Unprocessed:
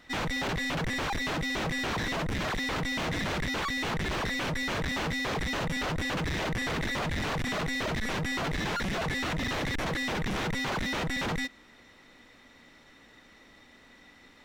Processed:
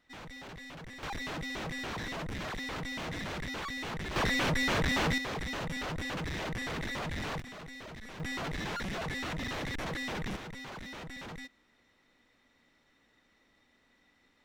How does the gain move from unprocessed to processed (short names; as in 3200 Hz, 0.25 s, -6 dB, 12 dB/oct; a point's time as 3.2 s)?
-15.5 dB
from 1.03 s -7 dB
from 4.16 s +2 dB
from 5.18 s -5.5 dB
from 7.4 s -15 dB
from 8.2 s -5.5 dB
from 10.36 s -13 dB